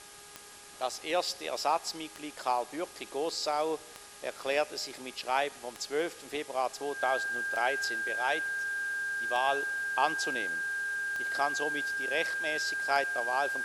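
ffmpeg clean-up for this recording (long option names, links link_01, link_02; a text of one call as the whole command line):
ffmpeg -i in.wav -af "adeclick=threshold=4,bandreject=frequency=410.5:width_type=h:width=4,bandreject=frequency=821:width_type=h:width=4,bandreject=frequency=1231.5:width_type=h:width=4,bandreject=frequency=1642:width_type=h:width=4,bandreject=frequency=1600:width=30,afwtdn=0.0035" out.wav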